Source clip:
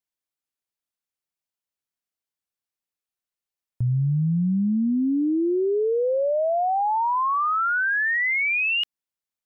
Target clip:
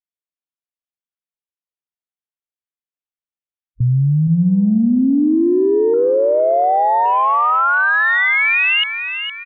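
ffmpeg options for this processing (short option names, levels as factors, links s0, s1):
-filter_complex "[0:a]afwtdn=0.02,asplit=6[s0][s1][s2][s3][s4][s5];[s1]adelay=461,afreqshift=31,volume=0.355[s6];[s2]adelay=922,afreqshift=62,volume=0.157[s7];[s3]adelay=1383,afreqshift=93,volume=0.0684[s8];[s4]adelay=1844,afreqshift=124,volume=0.0302[s9];[s5]adelay=2305,afreqshift=155,volume=0.0133[s10];[s0][s6][s7][s8][s9][s10]amix=inputs=6:normalize=0,aresample=8000,aresample=44100,volume=2.37"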